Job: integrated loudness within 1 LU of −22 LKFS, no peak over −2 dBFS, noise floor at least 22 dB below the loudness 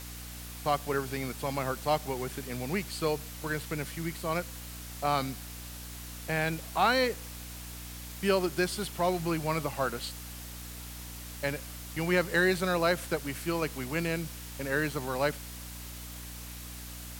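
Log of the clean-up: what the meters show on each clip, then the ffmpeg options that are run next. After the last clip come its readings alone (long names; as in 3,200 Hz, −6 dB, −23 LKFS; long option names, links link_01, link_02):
mains hum 60 Hz; hum harmonics up to 300 Hz; level of the hum −42 dBFS; background noise floor −43 dBFS; target noise floor −55 dBFS; integrated loudness −32.5 LKFS; sample peak −12.0 dBFS; target loudness −22.0 LKFS
→ -af "bandreject=frequency=60:width_type=h:width=6,bandreject=frequency=120:width_type=h:width=6,bandreject=frequency=180:width_type=h:width=6,bandreject=frequency=240:width_type=h:width=6,bandreject=frequency=300:width_type=h:width=6"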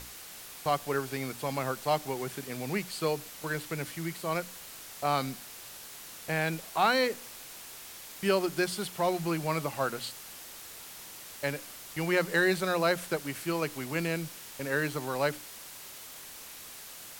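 mains hum none found; background noise floor −46 dBFS; target noise floor −54 dBFS
→ -af "afftdn=noise_reduction=8:noise_floor=-46"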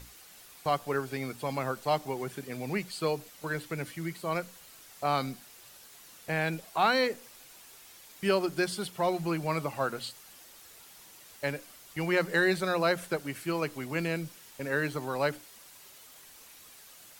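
background noise floor −53 dBFS; target noise floor −54 dBFS
→ -af "afftdn=noise_reduction=6:noise_floor=-53"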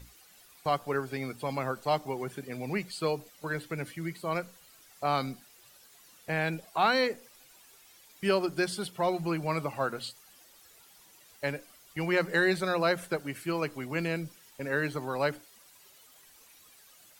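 background noise floor −58 dBFS; integrated loudness −31.5 LKFS; sample peak −13.5 dBFS; target loudness −22.0 LKFS
→ -af "volume=9.5dB"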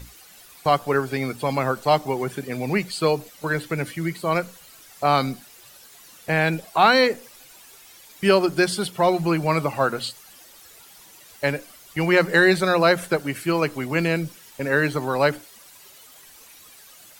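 integrated loudness −22.0 LKFS; sample peak −4.0 dBFS; background noise floor −48 dBFS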